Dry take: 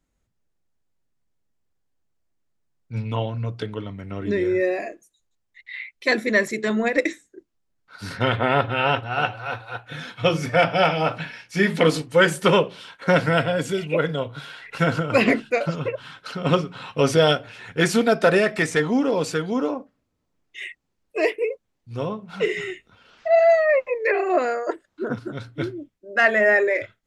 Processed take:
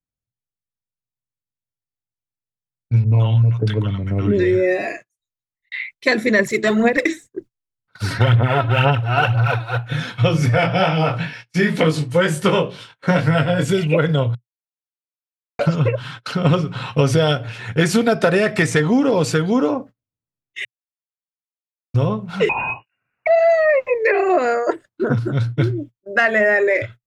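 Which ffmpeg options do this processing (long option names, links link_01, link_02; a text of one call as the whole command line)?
ffmpeg -i in.wav -filter_complex "[0:a]asettb=1/sr,asplit=3[link_01][link_02][link_03];[link_01]atrim=end=3.044[link_04];[link_02]atrim=start=3.04:end=5.72,asetpts=PTS-STARTPTS,afade=type=in:duration=0.004:curve=qsin,afade=type=out:start_time=2.676:duration=0.004:curve=qsin,acrossover=split=850[link_05][link_06];[link_06]adelay=80[link_07];[link_05][link_07]amix=inputs=2:normalize=0,atrim=end_sample=118188[link_08];[link_03]atrim=start=5.716[link_09];[link_04][link_08]acrossfade=duration=0.004:curve1=hsin:curve2=qsin[link_10];[link_10][link_09]acrossfade=duration=0.004:curve1=qsin:curve2=hsin,asettb=1/sr,asplit=3[link_11][link_12][link_13];[link_11]atrim=end=6.394[link_14];[link_12]atrim=start=6.39:end=9.78,asetpts=PTS-STARTPTS,afade=type=in:duration=0.004:curve=qsin,afade=type=out:start_time=3.386:duration=0.004:curve=qsin,aphaser=in_gain=1:out_gain=1:delay=3.2:decay=0.58:speed=2:type=sinusoidal[link_15];[link_13]atrim=start=9.776[link_16];[link_14][link_15]acrossfade=duration=0.004:curve1=hsin:curve2=qsin[link_17];[link_17][link_16]acrossfade=duration=0.004:curve1=qsin:curve2=hsin,asplit=3[link_18][link_19][link_20];[link_18]afade=type=out:start_time=10.53:duration=0.02[link_21];[link_19]flanger=delay=19:depth=4.3:speed=2.1,afade=type=in:start_time=10.53:duration=0.02,afade=type=out:start_time=13.67:duration=0.02[link_22];[link_20]afade=type=in:start_time=13.67:duration=0.02[link_23];[link_21][link_22][link_23]amix=inputs=3:normalize=0,asettb=1/sr,asplit=3[link_24][link_25][link_26];[link_24]atrim=end=22.494[link_27];[link_25]atrim=start=22.49:end=23.27,asetpts=PTS-STARTPTS,afade=type=in:duration=0.004:curve=qsin,afade=type=out:start_time=0.776:duration=0.004:curve=qsin,lowpass=frequency=2500:width_type=q:width=0.5098,lowpass=frequency=2500:width_type=q:width=0.6013,lowpass=frequency=2500:width_type=q:width=0.9,lowpass=frequency=2500:width_type=q:width=2.563,afreqshift=-2900[link_28];[link_26]atrim=start=23.266[link_29];[link_27][link_28]acrossfade=duration=0.004:curve1=hsin:curve2=qsin[link_30];[link_30][link_29]acrossfade=duration=0.004:curve1=qsin:curve2=hsin,asplit=5[link_31][link_32][link_33][link_34][link_35];[link_31]atrim=end=14.35,asetpts=PTS-STARTPTS,afade=type=out:start_time=14.346:duration=0.004:curve=hsin[link_36];[link_32]atrim=start=14.35:end=15.59,asetpts=PTS-STARTPTS,volume=0[link_37];[link_33]atrim=start=15.59:end=20.65,asetpts=PTS-STARTPTS,afade=type=in:duration=0.004:curve=hsin,afade=type=out:start_time=5.056:duration=0.004:curve=hsin[link_38];[link_34]atrim=start=20.65:end=21.94,asetpts=PTS-STARTPTS,volume=0[link_39];[link_35]atrim=start=21.94,asetpts=PTS-STARTPTS,afade=type=in:duration=0.004:curve=hsin[link_40];[link_36][link_37][link_38][link_39][link_40]concat=n=5:v=0:a=1,agate=range=-28dB:threshold=-42dB:ratio=16:detection=peak,equalizer=frequency=120:width_type=o:width=0.66:gain=13.5,acompressor=threshold=-19dB:ratio=6,volume=7dB" out.wav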